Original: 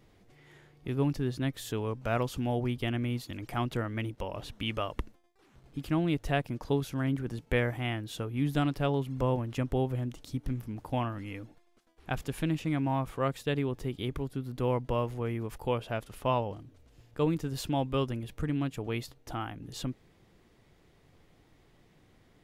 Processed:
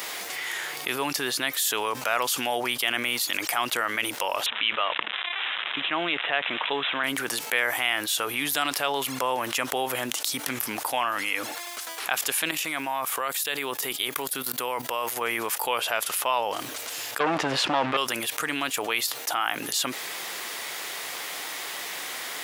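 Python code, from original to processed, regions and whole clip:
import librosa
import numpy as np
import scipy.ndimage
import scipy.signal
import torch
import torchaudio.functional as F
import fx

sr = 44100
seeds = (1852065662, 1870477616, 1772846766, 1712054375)

y = fx.chain(x, sr, fx.crossing_spikes(level_db=-31.0),
    fx.bandpass_edges(low_hz=130.0, high_hz=4600.0),
    fx.resample_bad(factor=6, down='none', up='filtered'), at=(4.46, 7.04))
y = fx.chain(y, sr, fx.high_shelf(hz=11000.0, db=10.0),
    fx.level_steps(step_db=13), at=(12.51, 15.21))
y = fx.chain(y, sr, fx.low_shelf(hz=400.0, db=8.0),
    fx.leveller(passes=3),
    fx.lowpass(hz=2600.0, slope=12), at=(17.2, 17.97))
y = scipy.signal.sosfilt(scipy.signal.butter(2, 1000.0, 'highpass', fs=sr, output='sos'), y)
y = fx.high_shelf(y, sr, hz=6900.0, db=11.5)
y = fx.env_flatten(y, sr, amount_pct=70)
y = y * librosa.db_to_amplitude(4.5)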